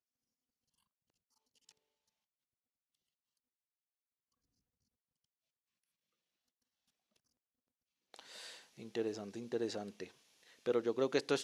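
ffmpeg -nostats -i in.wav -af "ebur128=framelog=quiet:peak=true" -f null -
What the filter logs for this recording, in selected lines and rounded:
Integrated loudness:
  I:         -38.9 LUFS
  Threshold: -50.9 LUFS
Loudness range:
  LRA:        18.9 LU
  Threshold: -65.0 LUFS
  LRA low:   -58.9 LUFS
  LRA high:  -40.0 LUFS
True peak:
  Peak:      -18.3 dBFS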